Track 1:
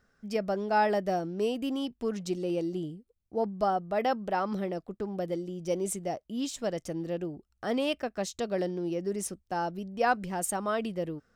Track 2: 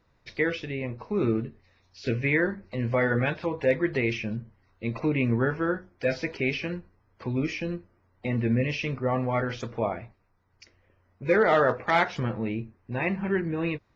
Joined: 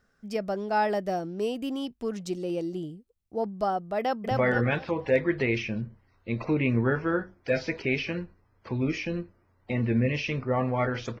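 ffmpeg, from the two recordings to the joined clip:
ffmpeg -i cue0.wav -i cue1.wav -filter_complex "[0:a]apad=whole_dur=11.2,atrim=end=11.2,atrim=end=4.312[link_01];[1:a]atrim=start=2.858:end=9.75[link_02];[link_01][link_02]acrossfade=duration=0.004:curve1=hsin:curve2=hsin,asplit=2[link_03][link_04];[link_04]afade=type=in:start_time=4:duration=0.01,afade=type=out:start_time=4.31:duration=0.01,aecho=0:1:240|480|720|960|1200:0.841395|0.294488|0.103071|0.0360748|0.0126262[link_05];[link_03][link_05]amix=inputs=2:normalize=0" out.wav

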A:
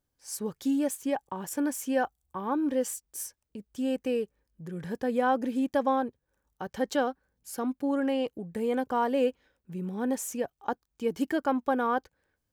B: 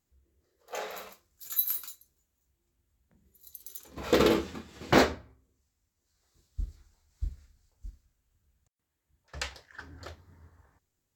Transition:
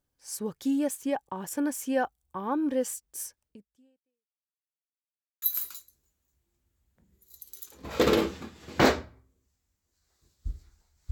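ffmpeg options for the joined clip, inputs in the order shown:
ffmpeg -i cue0.wav -i cue1.wav -filter_complex "[0:a]apad=whole_dur=11.11,atrim=end=11.11,asplit=2[link_01][link_02];[link_01]atrim=end=4.59,asetpts=PTS-STARTPTS,afade=type=out:start_time=3.47:duration=1.12:curve=exp[link_03];[link_02]atrim=start=4.59:end=5.42,asetpts=PTS-STARTPTS,volume=0[link_04];[1:a]atrim=start=1.55:end=7.24,asetpts=PTS-STARTPTS,afade=type=in:duration=0.004:curve=hsin[link_05];[link_03][link_04][link_05]concat=n=3:v=0:a=1" out.wav

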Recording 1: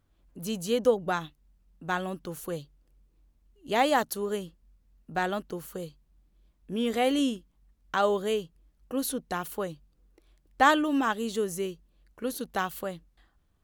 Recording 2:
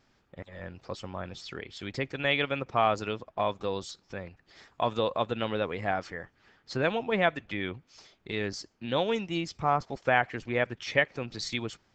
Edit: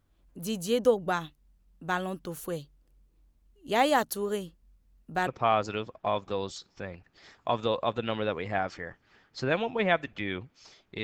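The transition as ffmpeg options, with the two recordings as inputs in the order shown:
ffmpeg -i cue0.wav -i cue1.wav -filter_complex "[0:a]apad=whole_dur=11.03,atrim=end=11.03,atrim=end=5.272[link_01];[1:a]atrim=start=2.598:end=8.36[link_02];[link_01][link_02]acrossfade=duration=0.004:curve1=hsin:curve2=hsin" out.wav

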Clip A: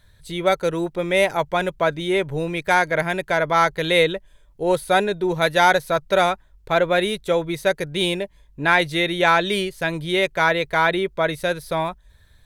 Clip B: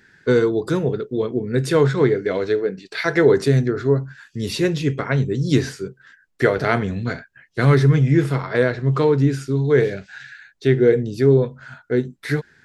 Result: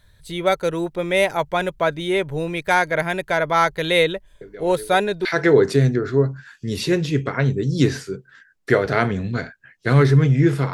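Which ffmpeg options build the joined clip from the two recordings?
ffmpeg -i cue0.wav -i cue1.wav -filter_complex "[1:a]asplit=2[link_01][link_02];[0:a]apad=whole_dur=10.73,atrim=end=10.73,atrim=end=5.252[link_03];[link_02]atrim=start=2.968:end=8.45[link_04];[link_01]atrim=start=2.13:end=2.97,asetpts=PTS-STARTPTS,volume=-16.5dB,afade=type=in:duration=0.004:curve=hsin,afade=type=out:start_time=0.836:duration=0.004:curve=hsin,adelay=194481S[link_05];[link_03][link_04]acrossfade=duration=0.004:curve1=hsin:curve2=hsin[link_06];[link_06][link_05]amix=inputs=2:normalize=0" out.wav

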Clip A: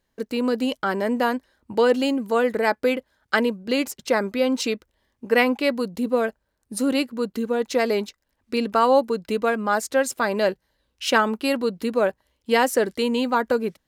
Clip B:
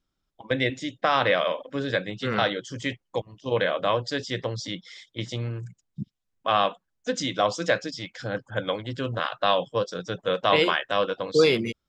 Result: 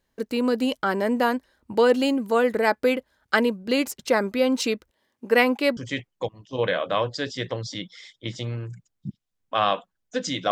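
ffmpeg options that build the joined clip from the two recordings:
ffmpeg -i cue0.wav -i cue1.wav -filter_complex "[0:a]asettb=1/sr,asplit=3[link_01][link_02][link_03];[link_01]atrim=end=4.914[link_04];[link_02]atrim=start=4.91:end=5.77,asetpts=PTS-STARTPTS,afade=type=in:duration=0.004:curve=qsin,afade=type=out:start_time=0.856:duration=0.004:curve=qsin,highpass=180[link_05];[link_03]atrim=start=5.766[link_06];[link_04][link_05]acrossfade=duration=0.004:curve1=hsin:curve2=qsin[link_07];[link_07][link_06]acrossfade=duration=0.004:curve1=qsin:curve2=hsin,apad=whole_dur=10.51,atrim=end=10.51,atrim=end=5.772[link_08];[1:a]atrim=start=2.698:end=7.44[link_09];[link_08][link_09]acrossfade=duration=0.004:curve1=hsin:curve2=hsin" out.wav

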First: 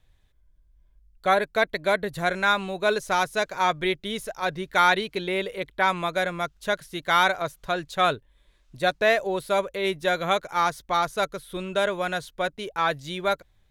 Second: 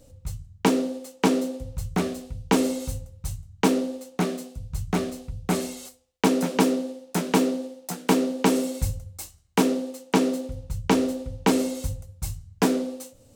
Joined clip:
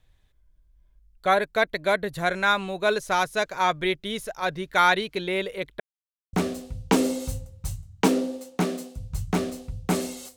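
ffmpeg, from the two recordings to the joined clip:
ffmpeg -i cue0.wav -i cue1.wav -filter_complex "[0:a]apad=whole_dur=10.36,atrim=end=10.36,asplit=2[link_01][link_02];[link_01]atrim=end=5.8,asetpts=PTS-STARTPTS,afade=type=out:start_time=5.796:duration=0.004:curve=hsin[link_03];[link_02]atrim=start=5.8:end=6.33,asetpts=PTS-STARTPTS,volume=0[link_04];[1:a]atrim=start=1.93:end=5.96,asetpts=PTS-STARTPTS,afade=type=in:duration=0.004:curve=hsin[link_05];[link_03][link_04][link_05]concat=n=3:v=0:a=1" out.wav

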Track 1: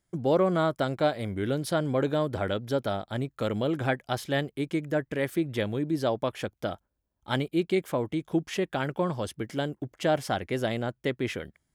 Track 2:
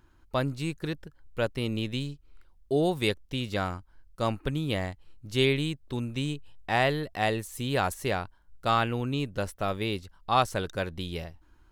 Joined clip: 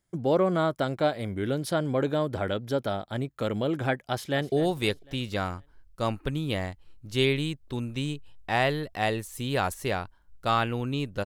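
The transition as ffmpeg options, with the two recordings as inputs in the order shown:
ffmpeg -i cue0.wav -i cue1.wav -filter_complex "[0:a]apad=whole_dur=11.25,atrim=end=11.25,atrim=end=4.522[link_01];[1:a]atrim=start=2.718:end=9.45[link_02];[link_01][link_02]acrossfade=duration=0.004:curve1=hsin:curve2=hsin,asplit=2[link_03][link_04];[link_04]afade=type=in:start_time=4.07:duration=0.01,afade=type=out:start_time=4.52:duration=0.01,aecho=0:1:250|500|750|1000|1250:0.16788|0.0839402|0.0419701|0.0209851|0.0104925[link_05];[link_03][link_05]amix=inputs=2:normalize=0" out.wav

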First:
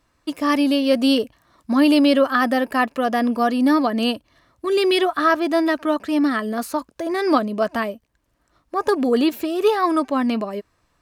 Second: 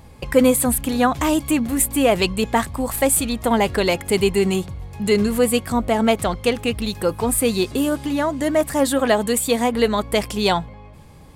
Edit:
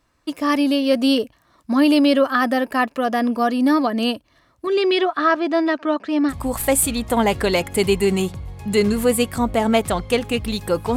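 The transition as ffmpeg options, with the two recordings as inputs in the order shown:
ffmpeg -i cue0.wav -i cue1.wav -filter_complex "[0:a]asettb=1/sr,asplit=3[link_01][link_02][link_03];[link_01]atrim=end=4.674[link_04];[link_02]atrim=start=4.67:end=6.34,asetpts=PTS-STARTPTS,afade=type=in:duration=0.004:curve=qsin,afade=type=out:start_time=1.666:duration=0.004:curve=qsin,highpass=140,lowpass=4800[link_05];[link_03]atrim=start=6.336[link_06];[link_04][link_05]acrossfade=duration=0.004:curve1=hsin:curve2=qsin[link_07];[link_07][link_06]acrossfade=duration=0.004:curve1=qsin:curve2=hsin,apad=whole_dur=10.96,atrim=end=10.96,atrim=end=6.34,asetpts=PTS-STARTPTS[link_08];[1:a]atrim=start=2.62:end=7.3,asetpts=PTS-STARTPTS[link_09];[link_08][link_09]acrossfade=duration=0.06:curve1=tri:curve2=tri" out.wav

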